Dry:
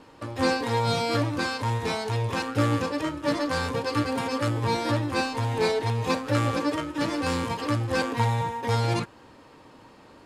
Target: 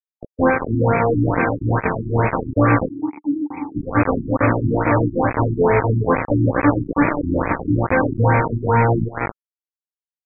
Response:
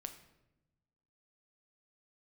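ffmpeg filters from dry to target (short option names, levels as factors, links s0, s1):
-filter_complex "[0:a]aecho=1:1:329:0.562,acrusher=bits=3:mix=0:aa=0.000001,asettb=1/sr,asplit=3[s0][s1][s2];[s0]atrim=end=2.894[s3];[s1]atrim=start=2.89:end=3.76,asetpts=PTS-STARTPTS,afade=t=in:d=0.004:c=qsin,afade=t=out:st=0.866:d=0.004:c=qsin,asplit=3[s4][s5][s6];[s4]bandpass=f=300:t=q:w=8,volume=1[s7];[s5]bandpass=f=870:t=q:w=8,volume=0.501[s8];[s6]bandpass=f=2240:t=q:w=8,volume=0.355[s9];[s7][s8][s9]amix=inputs=3:normalize=0[s10];[s2]atrim=start=3.756[s11];[s3][s10]acrossfade=d=0.004:c1=hsin:c2=qsin[s12];[s12][s11]acrossfade=d=0.004:c1=qsin:c2=hsin,afftfilt=real='re*lt(b*sr/1024,350*pow(2600/350,0.5+0.5*sin(2*PI*2.3*pts/sr)))':imag='im*lt(b*sr/1024,350*pow(2600/350,0.5+0.5*sin(2*PI*2.3*pts/sr)))':win_size=1024:overlap=0.75,volume=2.66"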